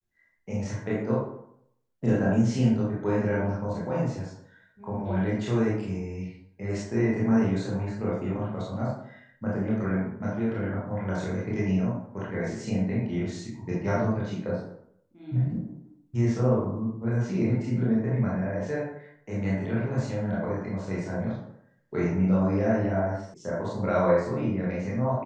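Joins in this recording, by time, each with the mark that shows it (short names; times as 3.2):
23.34 sound cut off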